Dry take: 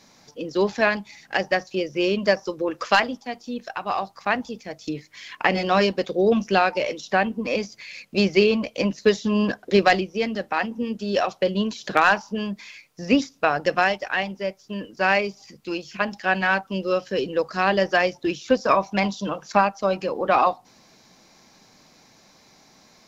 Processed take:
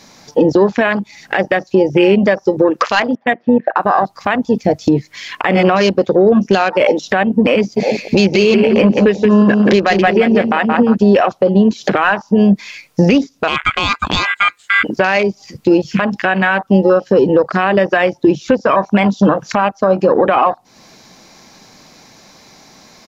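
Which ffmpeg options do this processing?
ffmpeg -i in.wav -filter_complex "[0:a]asettb=1/sr,asplit=3[link_01][link_02][link_03];[link_01]atrim=end=3.154[link_04];[link_02]atrim=start=3.15:end=3.76,asetpts=PTS-STARTPTS,afade=type=in:duration=0.004:curve=qsin,afade=type=out:start_time=0.606:duration=0.004:curve=qsin,highpass=200,equalizer=frequency=280:width_type=q:width=4:gain=-5,equalizer=frequency=410:width_type=q:width=4:gain=-5,equalizer=frequency=600:width_type=q:width=4:gain=5,equalizer=frequency=880:width_type=q:width=4:gain=-8,equalizer=frequency=1300:width_type=q:width=4:gain=-4,equalizer=frequency=1800:width_type=q:width=4:gain=10,lowpass=frequency=2100:width=0.5412,lowpass=frequency=2100:width=1.3066[link_05];[link_03]atrim=start=3.756[link_06];[link_04][link_05]acrossfade=duration=0.004:curve1=hsin:curve2=qsin[link_07];[link_07][link_06]acrossfade=duration=0.004:curve1=qsin:curve2=hsin,asplit=3[link_08][link_09][link_10];[link_08]afade=type=out:start_time=7.76:duration=0.02[link_11];[link_09]aecho=1:1:173|346|519|692:0.376|0.139|0.0515|0.019,afade=type=in:start_time=7.76:duration=0.02,afade=type=out:start_time=10.94:duration=0.02[link_12];[link_10]afade=type=in:start_time=10.94:duration=0.02[link_13];[link_11][link_12][link_13]amix=inputs=3:normalize=0,asplit=3[link_14][link_15][link_16];[link_14]afade=type=out:start_time=13.47:duration=0.02[link_17];[link_15]aeval=exprs='val(0)*sin(2*PI*1800*n/s)':channel_layout=same,afade=type=in:start_time=13.47:duration=0.02,afade=type=out:start_time=14.83:duration=0.02[link_18];[link_16]afade=type=in:start_time=14.83:duration=0.02[link_19];[link_17][link_18][link_19]amix=inputs=3:normalize=0,afwtdn=0.0282,acompressor=threshold=-34dB:ratio=6,alimiter=level_in=28.5dB:limit=-1dB:release=50:level=0:latency=1,volume=-1dB" out.wav

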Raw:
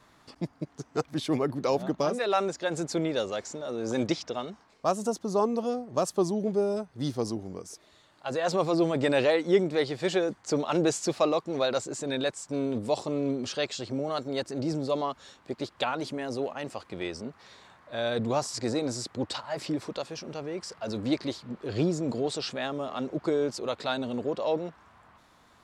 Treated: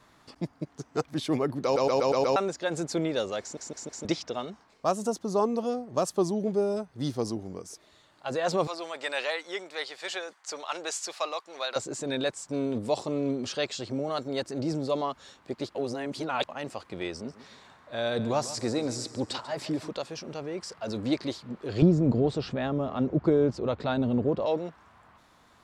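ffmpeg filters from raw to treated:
ffmpeg -i in.wav -filter_complex "[0:a]asettb=1/sr,asplit=3[link_01][link_02][link_03];[link_01]atrim=end=8.674[link_04];[link_02]atrim=start=8.67:end=11.76,asetpts=PTS-STARTPTS,afade=type=in:duration=0.004:curve=qsin,afade=type=out:start_time=3.086:duration=0.004:curve=qsin,highpass=950[link_05];[link_03]atrim=start=11.756[link_06];[link_04][link_05]acrossfade=duration=0.004:curve1=hsin:curve2=qsin[link_07];[link_07][link_06]acrossfade=duration=0.004:curve1=qsin:curve2=hsin,asettb=1/sr,asplit=3[link_08][link_09][link_10];[link_08]atrim=end=17.114[link_11];[link_09]atrim=start=17.11:end=19.88,asetpts=PTS-STARTPTS,afade=type=in:duration=0.004:curve=qsin,afade=type=out:start_time=2.766:duration=0.004:curve=qsin,aecho=1:1:142|284|426|568:0.178|0.0765|0.0329|0.0141,atrim=end_sample=122157[link_12];[link_10]atrim=start=19.876[link_13];[link_11][link_12]acrossfade=duration=0.004:curve1=hsin:curve2=qsin[link_14];[link_14][link_13]acrossfade=duration=0.004:curve1=qsin:curve2=hsin,asettb=1/sr,asplit=3[link_15][link_16][link_17];[link_15]atrim=end=21.824[link_18];[link_16]atrim=start=21.82:end=24.46,asetpts=PTS-STARTPTS,afade=type=in:duration=0.004:curve=qsin,afade=type=out:start_time=2.636:duration=0.004:curve=qsin,aemphasis=mode=reproduction:type=riaa[link_19];[link_17]atrim=start=24.456[link_20];[link_18][link_19]acrossfade=duration=0.004:curve1=hsin:curve2=qsin[link_21];[link_21][link_20]acrossfade=duration=0.004:curve1=qsin:curve2=hsin,asplit=13[link_22][link_23][link_24][link_25][link_26][link_27][link_28][link_29][link_30][link_31][link_32][link_33][link_34];[link_22]atrim=end=1.762[link_35];[link_23]atrim=start=1.638:end=1.762[link_36];[link_24]atrim=start=1.638:end=1.762[link_37];[link_25]atrim=start=1.638:end=1.762[link_38];[link_26]atrim=start=1.638:end=1.762[link_39];[link_27]atrim=start=1.638:end=1.762[link_40];[link_28]atrim=start=2.358:end=3.572[link_41];[link_29]atrim=start=3.408:end=3.572[link_42];[link_30]atrim=start=3.408:end=3.572[link_43];[link_31]atrim=start=3.408:end=3.572[link_44];[link_32]atrim=start=4.048:end=15.752[link_45];[link_33]atrim=start=15.748:end=16.492,asetpts=PTS-STARTPTS,areverse[link_46];[link_34]atrim=start=16.488[link_47];[link_35][link_36]acrossfade=duration=0.004:curve1=hsin:curve2=hsin[link_48];[link_48][link_37]acrossfade=duration=0.004:curve1=hsin:curve2=hsin[link_49];[link_49][link_38]acrossfade=duration=0.004:curve1=hsin:curve2=hsin[link_50];[link_50][link_39]acrossfade=duration=0.004:curve1=hsin:curve2=hsin[link_51];[link_51][link_40]acrossfade=duration=0.004:curve1=hsin:curve2=hsin[link_52];[link_52][link_41]acrossfade=duration=0.004:curve1=hsin:curve2=hsin[link_53];[link_53][link_42]acrossfade=duration=0.004:curve1=hsin:curve2=hsin[link_54];[link_54][link_43]acrossfade=duration=0.004:curve1=hsin:curve2=hsin[link_55];[link_55][link_44]acrossfade=duration=0.004:curve1=hsin:curve2=hsin[link_56];[link_56][link_45]acrossfade=duration=0.004:curve1=hsin:curve2=hsin[link_57];[link_57][link_46]acrossfade=duration=0.004:curve1=hsin:curve2=hsin[link_58];[link_58][link_47]acrossfade=duration=0.004:curve1=hsin:curve2=hsin" out.wav

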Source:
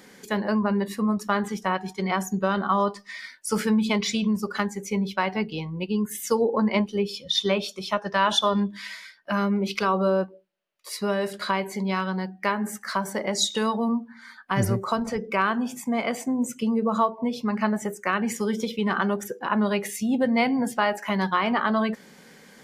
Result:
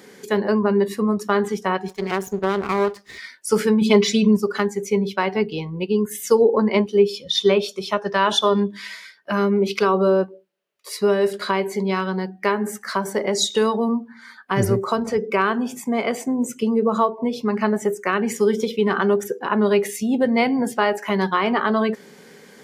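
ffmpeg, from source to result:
ffmpeg -i in.wav -filter_complex "[0:a]asettb=1/sr,asplit=3[link_01][link_02][link_03];[link_01]atrim=end=1.884[link_04];[link_02]atrim=start=1.88:end=3.18,asetpts=PTS-STARTPTS,afade=type=in:duration=0.004:curve=qsin,afade=type=out:start_time=1.296:duration=0.004:curve=qsin,aeval=exprs='max(val(0),0)':channel_layout=same[link_05];[link_03]atrim=start=3.176[link_06];[link_04][link_05]acrossfade=duration=0.004:curve1=hsin:curve2=qsin[link_07];[link_07][link_06]acrossfade=duration=0.004:curve1=qsin:curve2=hsin,asettb=1/sr,asplit=3[link_08][link_09][link_10];[link_08]atrim=end=3.814[link_11];[link_09]atrim=start=3.81:end=4.37,asetpts=PTS-STARTPTS,afade=type=in:duration=0.004:curve=qsin,afade=type=out:start_time=0.556:duration=0.004:curve=qsin,aecho=1:1:5:0.83,atrim=end_sample=24696[link_12];[link_10]atrim=start=4.366[link_13];[link_11][link_12]acrossfade=duration=0.004:curve1=hsin:curve2=qsin[link_14];[link_14][link_13]acrossfade=duration=0.004:curve1=qsin:curve2=hsin,highpass=55,equalizer=frequency=410:width_type=o:width=0.33:gain=9.5,volume=2.5dB" out.wav

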